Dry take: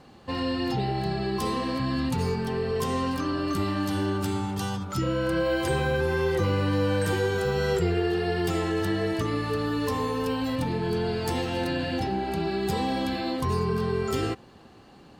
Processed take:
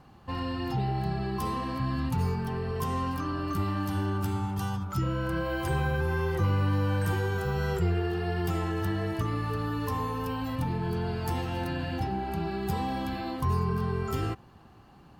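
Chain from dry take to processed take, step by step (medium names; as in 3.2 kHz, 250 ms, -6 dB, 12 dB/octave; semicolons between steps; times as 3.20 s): graphic EQ 250/500/2000/4000/8000 Hz -6/-10/-6/-9/-9 dB; trim +2.5 dB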